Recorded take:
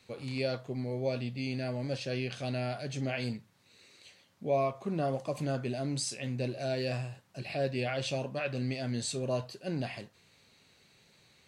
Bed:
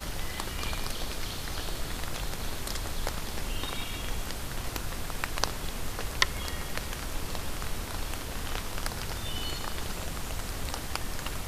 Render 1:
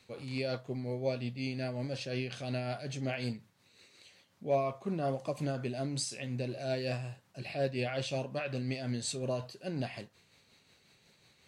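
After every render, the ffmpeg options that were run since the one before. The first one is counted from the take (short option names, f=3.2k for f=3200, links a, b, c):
-af "asoftclip=type=hard:threshold=-20.5dB,tremolo=f=5.5:d=0.38"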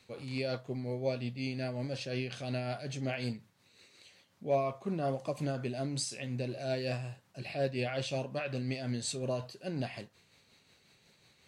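-af anull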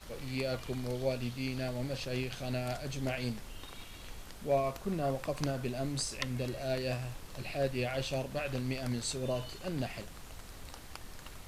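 -filter_complex "[1:a]volume=-13.5dB[a];[0:a][a]amix=inputs=2:normalize=0"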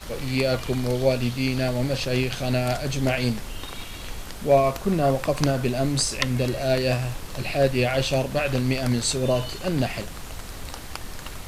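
-af "volume=12dB"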